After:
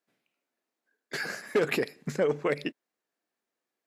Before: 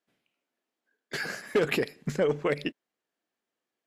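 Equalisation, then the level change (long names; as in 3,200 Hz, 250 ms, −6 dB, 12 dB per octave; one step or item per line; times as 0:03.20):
high-pass filter 150 Hz 6 dB per octave
parametric band 3,100 Hz −4.5 dB 0.31 octaves
0.0 dB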